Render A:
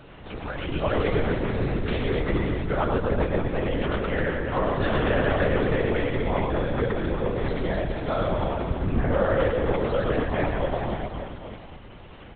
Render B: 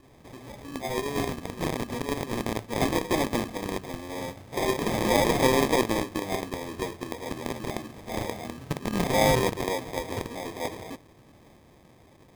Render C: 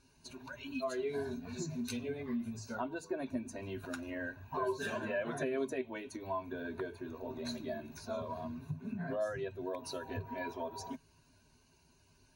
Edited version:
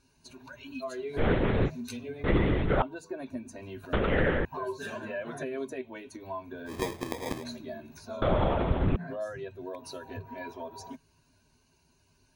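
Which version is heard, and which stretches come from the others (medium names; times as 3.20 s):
C
1.19–1.68 s: from A, crossfade 0.06 s
2.24–2.82 s: from A
3.93–4.45 s: from A
6.70–7.41 s: from B, crossfade 0.10 s
8.22–8.96 s: from A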